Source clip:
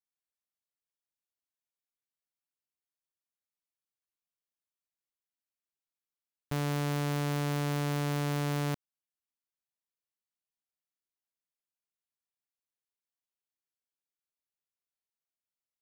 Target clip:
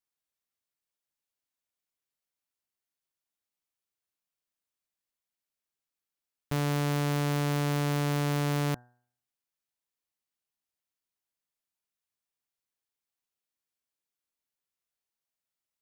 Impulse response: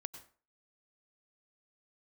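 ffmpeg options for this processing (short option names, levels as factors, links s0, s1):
-af "bandreject=f=122.2:t=h:w=4,bandreject=f=244.4:t=h:w=4,bandreject=f=366.6:t=h:w=4,bandreject=f=488.8:t=h:w=4,bandreject=f=611:t=h:w=4,bandreject=f=733.2:t=h:w=4,bandreject=f=855.4:t=h:w=4,bandreject=f=977.6:t=h:w=4,bandreject=f=1099.8:t=h:w=4,bandreject=f=1222:t=h:w=4,bandreject=f=1344.2:t=h:w=4,bandreject=f=1466.4:t=h:w=4,bandreject=f=1588.6:t=h:w=4,bandreject=f=1710.8:t=h:w=4,bandreject=f=1833:t=h:w=4,volume=1.41"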